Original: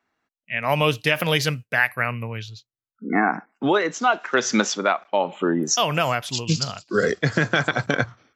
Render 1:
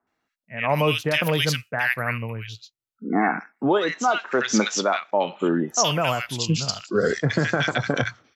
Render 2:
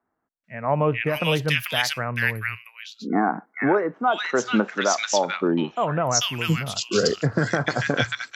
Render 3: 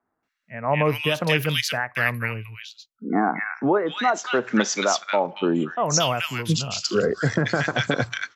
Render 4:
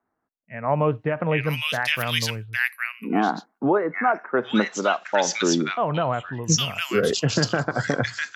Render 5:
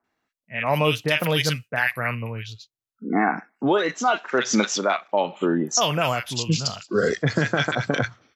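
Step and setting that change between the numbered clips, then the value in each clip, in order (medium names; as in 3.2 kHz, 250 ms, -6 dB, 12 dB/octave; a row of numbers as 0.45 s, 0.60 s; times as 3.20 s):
bands offset in time, time: 70 ms, 440 ms, 230 ms, 810 ms, 40 ms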